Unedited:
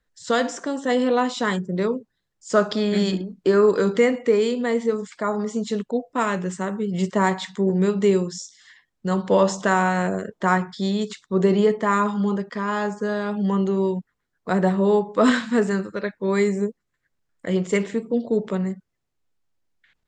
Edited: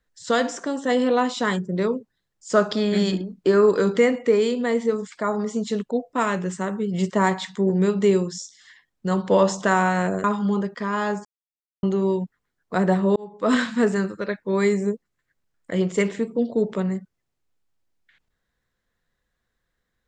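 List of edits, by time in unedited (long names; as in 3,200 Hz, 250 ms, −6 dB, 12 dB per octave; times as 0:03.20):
0:10.24–0:11.99: remove
0:13.00–0:13.58: silence
0:14.91–0:15.40: fade in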